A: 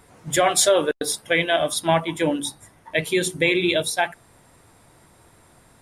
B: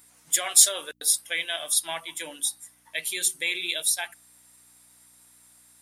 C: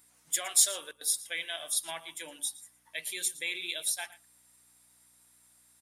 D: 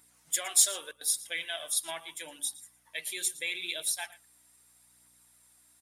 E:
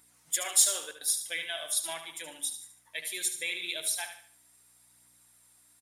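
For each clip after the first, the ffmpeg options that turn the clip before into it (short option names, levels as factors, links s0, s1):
-af "aeval=exprs='val(0)+0.0141*(sin(2*PI*60*n/s)+sin(2*PI*2*60*n/s)/2+sin(2*PI*3*60*n/s)/3+sin(2*PI*4*60*n/s)/4+sin(2*PI*5*60*n/s)/5)':c=same,aderivative,volume=1.5"
-af "aecho=1:1:115:0.126,volume=0.447"
-af "aphaser=in_gain=1:out_gain=1:delay=3.2:decay=0.29:speed=0.79:type=triangular"
-af "aecho=1:1:74|148|222|296:0.355|0.131|0.0486|0.018"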